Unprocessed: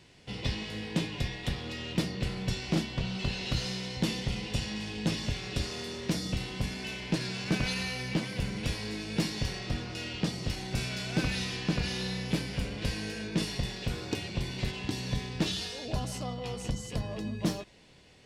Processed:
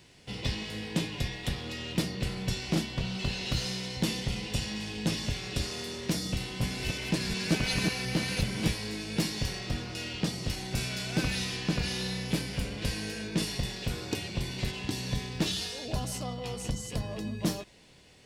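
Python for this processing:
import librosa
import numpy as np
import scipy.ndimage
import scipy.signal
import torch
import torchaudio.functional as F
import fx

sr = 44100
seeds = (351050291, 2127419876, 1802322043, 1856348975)

y = fx.reverse_delay(x, sr, ms=359, wet_db=-2.0, at=(6.26, 8.72))
y = fx.high_shelf(y, sr, hz=8800.0, db=10.0)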